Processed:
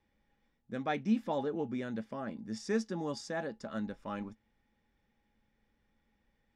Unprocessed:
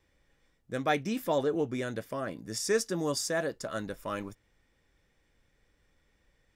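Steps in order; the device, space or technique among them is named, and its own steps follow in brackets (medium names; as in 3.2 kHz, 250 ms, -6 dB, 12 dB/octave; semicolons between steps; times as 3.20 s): inside a cardboard box (low-pass 4.6 kHz 12 dB/octave; small resonant body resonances 220/830 Hz, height 14 dB, ringing for 100 ms); trim -7 dB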